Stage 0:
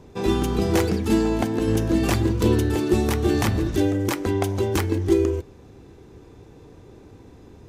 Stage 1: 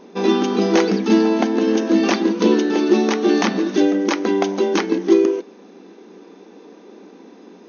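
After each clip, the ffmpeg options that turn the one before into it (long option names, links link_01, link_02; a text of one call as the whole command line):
ffmpeg -i in.wav -af "afftfilt=real='re*between(b*sr/4096,180,6600)':imag='im*between(b*sr/4096,180,6600)':win_size=4096:overlap=0.75,acontrast=26,volume=1dB" out.wav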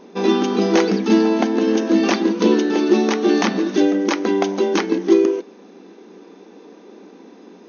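ffmpeg -i in.wav -af anull out.wav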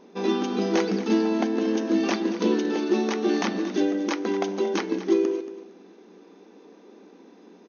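ffmpeg -i in.wav -af "aecho=1:1:230|460|690:0.2|0.0479|0.0115,volume=-7.5dB" out.wav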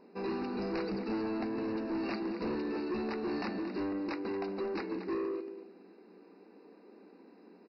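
ffmpeg -i in.wav -af "aresample=11025,asoftclip=type=tanh:threshold=-24.5dB,aresample=44100,asuperstop=centerf=3300:order=12:qfactor=3.5,volume=-6.5dB" out.wav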